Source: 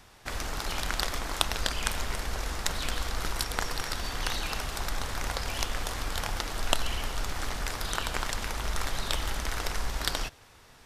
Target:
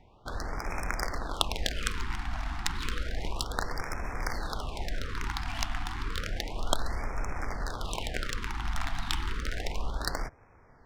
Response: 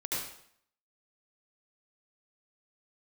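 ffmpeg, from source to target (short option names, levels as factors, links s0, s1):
-af "adynamicsmooth=sensitivity=5:basefreq=1700,afftfilt=real='re*(1-between(b*sr/1024,450*pow(3700/450,0.5+0.5*sin(2*PI*0.31*pts/sr))/1.41,450*pow(3700/450,0.5+0.5*sin(2*PI*0.31*pts/sr))*1.41))':imag='im*(1-between(b*sr/1024,450*pow(3700/450,0.5+0.5*sin(2*PI*0.31*pts/sr))/1.41,450*pow(3700/450,0.5+0.5*sin(2*PI*0.31*pts/sr))*1.41))':win_size=1024:overlap=0.75"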